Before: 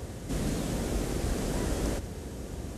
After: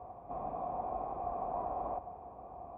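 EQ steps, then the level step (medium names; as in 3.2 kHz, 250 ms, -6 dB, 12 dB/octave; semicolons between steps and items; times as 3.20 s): dynamic bell 790 Hz, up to +5 dB, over -47 dBFS, Q 0.72; cascade formant filter a; +7.5 dB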